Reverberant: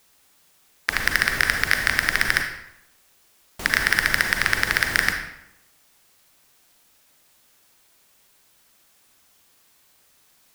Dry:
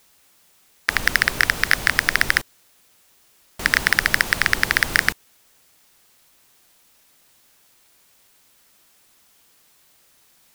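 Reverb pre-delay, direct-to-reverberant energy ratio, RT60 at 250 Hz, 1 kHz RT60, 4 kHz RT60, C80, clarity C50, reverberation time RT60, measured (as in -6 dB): 36 ms, 4.5 dB, 0.85 s, 0.85 s, 0.60 s, 9.0 dB, 6.0 dB, 0.85 s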